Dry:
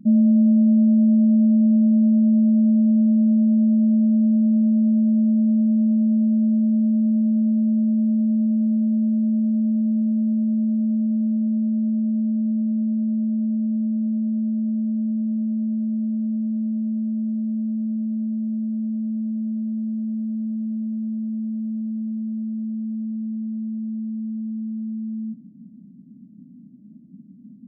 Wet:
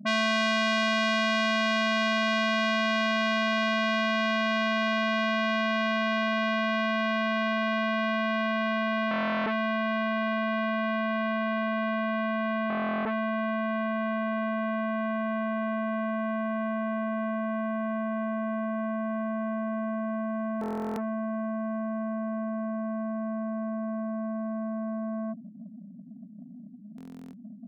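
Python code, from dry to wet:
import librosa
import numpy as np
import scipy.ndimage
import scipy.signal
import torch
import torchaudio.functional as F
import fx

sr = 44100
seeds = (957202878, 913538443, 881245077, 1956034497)

y = fx.spec_expand(x, sr, power=1.7)
y = fx.buffer_glitch(y, sr, at_s=(9.09, 12.68, 20.59, 26.96), block=1024, repeats=15)
y = fx.transformer_sat(y, sr, knee_hz=2100.0)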